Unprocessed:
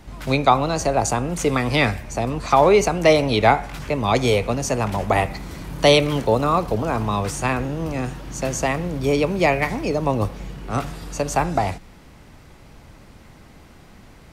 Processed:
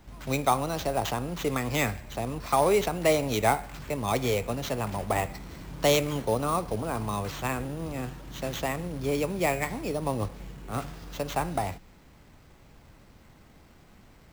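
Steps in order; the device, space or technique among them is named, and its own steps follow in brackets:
early companding sampler (sample-rate reduction 9,900 Hz, jitter 0%; log-companded quantiser 6 bits)
level −8.5 dB

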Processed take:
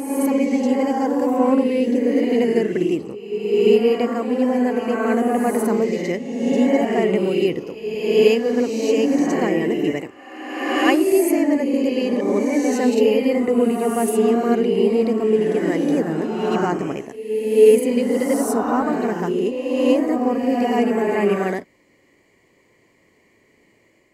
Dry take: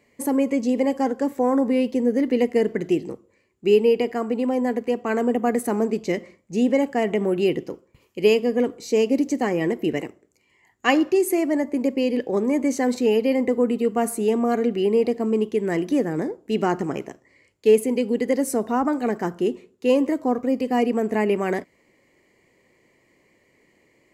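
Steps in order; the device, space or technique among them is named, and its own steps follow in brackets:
reverse reverb (reversed playback; convolution reverb RT60 1.5 s, pre-delay 44 ms, DRR −0.5 dB; reversed playback)

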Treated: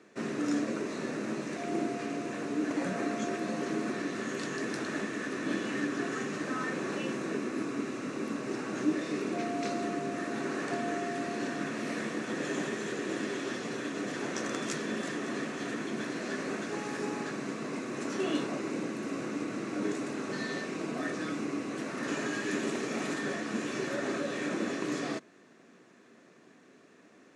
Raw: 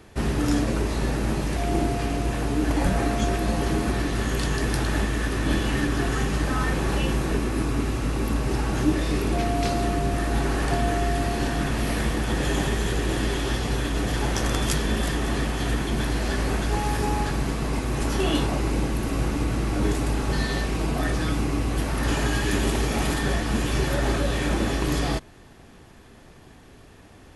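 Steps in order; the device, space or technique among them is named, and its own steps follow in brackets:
television speaker (loudspeaker in its box 200–7,500 Hz, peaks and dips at 840 Hz −10 dB, 3,200 Hz −8 dB, 4,800 Hz −6 dB)
level −5.5 dB

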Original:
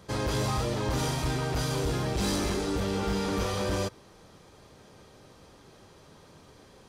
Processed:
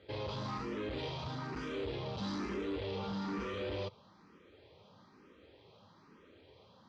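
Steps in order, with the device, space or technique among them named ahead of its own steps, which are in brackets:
barber-pole phaser into a guitar amplifier (frequency shifter mixed with the dry sound +1.1 Hz; soft clipping −29.5 dBFS, distortion −14 dB; loudspeaker in its box 96–4,100 Hz, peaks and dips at 140 Hz −7 dB, 720 Hz −6 dB, 1,600 Hz −4 dB)
level −2 dB

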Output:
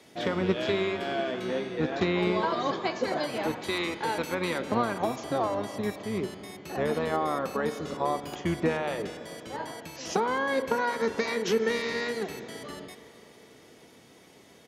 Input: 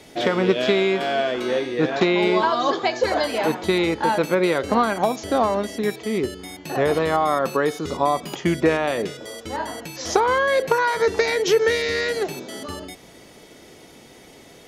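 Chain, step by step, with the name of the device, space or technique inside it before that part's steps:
0:03.61–0:04.60: tilt shelving filter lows −4.5 dB, about 1,200 Hz
high-pass filter 140 Hz 12 dB per octave
spring reverb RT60 3.5 s, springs 35/42 ms, chirp 30 ms, DRR 11 dB
octave pedal (pitch-shifted copies added −12 semitones −7 dB)
level −9 dB

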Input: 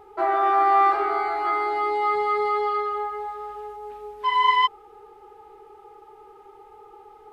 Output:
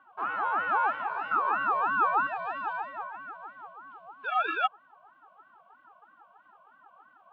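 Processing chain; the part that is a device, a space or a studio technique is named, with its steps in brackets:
0:01.31–0:02.27: flat-topped bell 600 Hz +12.5 dB 1.1 octaves
voice changer toy (ring modulator whose carrier an LFO sweeps 470 Hz, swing 50%, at 3.1 Hz; loudspeaker in its box 520–3,600 Hz, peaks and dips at 550 Hz −9 dB, 820 Hz +10 dB, 1,300 Hz +9 dB, 1,900 Hz −9 dB, 3,000 Hz +5 dB)
level −9 dB

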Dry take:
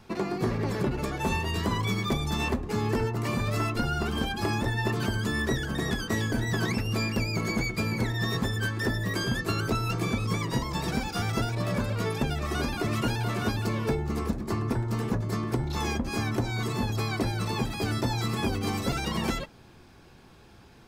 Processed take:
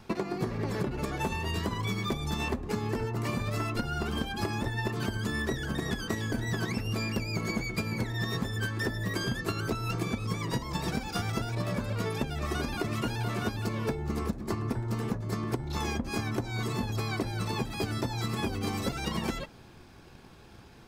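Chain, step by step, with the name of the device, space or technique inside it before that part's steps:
drum-bus smash (transient designer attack +8 dB, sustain +1 dB; downward compressor, threshold −27 dBFS, peak gain reduction 11.5 dB; soft clipping −17.5 dBFS, distortion −26 dB)

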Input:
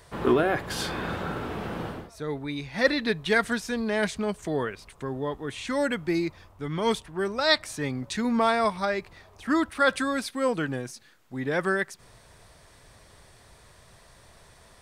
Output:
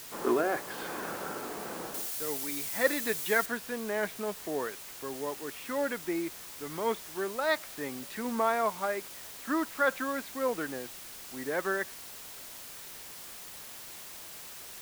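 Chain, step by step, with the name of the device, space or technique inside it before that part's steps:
wax cylinder (band-pass filter 300–2,100 Hz; tape wow and flutter 18 cents; white noise bed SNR 11 dB)
0:01.94–0:03.46: high-shelf EQ 4,200 Hz +10.5 dB
level −4 dB

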